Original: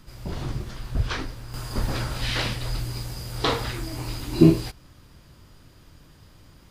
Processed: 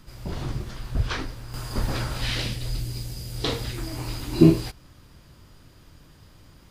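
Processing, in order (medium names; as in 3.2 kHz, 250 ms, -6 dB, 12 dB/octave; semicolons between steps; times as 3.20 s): 2.35–3.78 s: peaking EQ 1.1 kHz -10.5 dB 1.8 oct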